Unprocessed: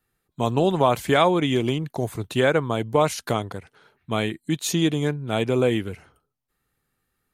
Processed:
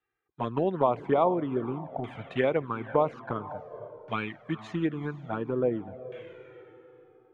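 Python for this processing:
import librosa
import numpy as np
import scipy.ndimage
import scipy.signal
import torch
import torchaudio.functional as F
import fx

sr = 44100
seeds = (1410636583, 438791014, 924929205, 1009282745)

y = fx.highpass(x, sr, hz=230.0, slope=6)
y = fx.transient(y, sr, attack_db=4, sustain_db=0)
y = fx.echo_diffused(y, sr, ms=477, feedback_pct=42, wet_db=-13.5)
y = fx.env_flanger(y, sr, rest_ms=2.5, full_db=-14.0)
y = fx.filter_lfo_lowpass(y, sr, shape='saw_down', hz=0.49, low_hz=670.0, high_hz=2400.0, q=1.5)
y = y * 10.0 ** (-5.0 / 20.0)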